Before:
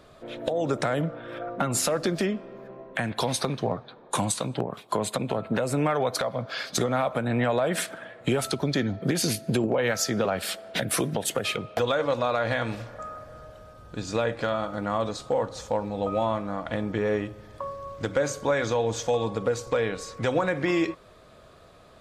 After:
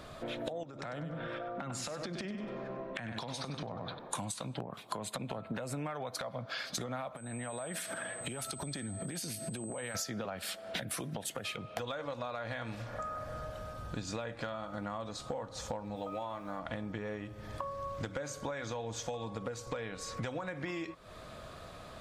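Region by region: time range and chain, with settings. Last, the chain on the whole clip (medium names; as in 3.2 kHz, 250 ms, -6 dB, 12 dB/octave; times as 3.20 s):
0.63–3.99 s: low-pass 6.4 kHz + feedback delay 97 ms, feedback 22%, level -9.5 dB + compression 12:1, threshold -36 dBFS
7.15–9.94 s: treble shelf 11 kHz +6.5 dB + compression 16:1, threshold -36 dBFS + whistle 8.2 kHz -48 dBFS
15.95–16.58 s: bass shelf 190 Hz -8.5 dB + comb 6.7 ms, depth 33% + added noise pink -63 dBFS
whole clip: peaking EQ 410 Hz -5.5 dB 0.7 oct; compression 10:1, threshold -41 dBFS; trim +5 dB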